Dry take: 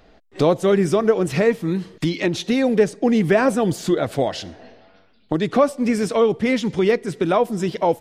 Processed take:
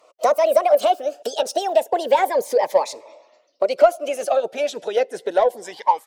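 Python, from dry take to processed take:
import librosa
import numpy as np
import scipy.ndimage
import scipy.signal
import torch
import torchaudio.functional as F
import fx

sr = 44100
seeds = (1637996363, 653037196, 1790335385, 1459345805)

p1 = fx.speed_glide(x, sr, from_pct=169, to_pct=95)
p2 = fx.filter_sweep_highpass(p1, sr, from_hz=580.0, to_hz=3400.0, start_s=5.61, end_s=6.59, q=6.8)
p3 = fx.hpss(p2, sr, part='percussive', gain_db=9)
p4 = 10.0 ** (-4.0 / 20.0) * np.tanh(p3 / 10.0 ** (-4.0 / 20.0))
p5 = p3 + (p4 * 10.0 ** (-8.0 / 20.0))
p6 = fx.notch_cascade(p5, sr, direction='rising', hz=0.3)
y = p6 * 10.0 ** (-12.5 / 20.0)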